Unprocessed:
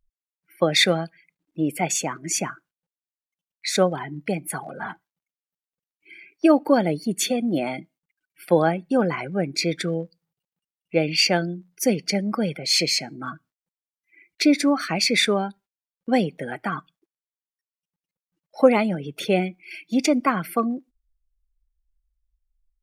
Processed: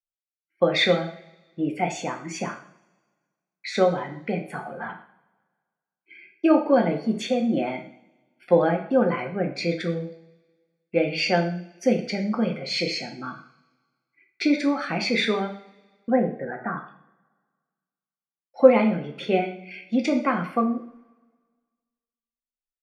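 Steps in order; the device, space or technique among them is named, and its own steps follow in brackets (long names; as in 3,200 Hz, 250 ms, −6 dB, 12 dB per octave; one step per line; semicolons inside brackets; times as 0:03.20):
hearing-loss simulation (low-pass filter 3,200 Hz 12 dB per octave; downward expander −48 dBFS)
0:16.10–0:16.78: Chebyshev low-pass filter 1,800 Hz, order 4
coupled-rooms reverb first 0.49 s, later 1.6 s, from −22 dB, DRR 2 dB
level −3 dB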